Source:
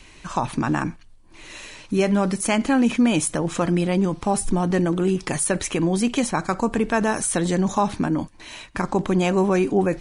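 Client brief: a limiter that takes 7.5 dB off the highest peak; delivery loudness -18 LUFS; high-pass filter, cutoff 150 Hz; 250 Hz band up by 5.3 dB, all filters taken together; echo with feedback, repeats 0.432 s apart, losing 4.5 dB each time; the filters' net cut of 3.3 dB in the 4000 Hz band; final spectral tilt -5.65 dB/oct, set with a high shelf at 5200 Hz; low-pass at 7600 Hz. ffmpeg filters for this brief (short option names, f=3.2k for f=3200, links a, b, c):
-af "highpass=150,lowpass=7.6k,equalizer=f=250:t=o:g=8,equalizer=f=4k:t=o:g=-6,highshelf=f=5.2k:g=3.5,alimiter=limit=-10.5dB:level=0:latency=1,aecho=1:1:432|864|1296|1728|2160|2592|3024|3456|3888:0.596|0.357|0.214|0.129|0.0772|0.0463|0.0278|0.0167|0.01,volume=1dB"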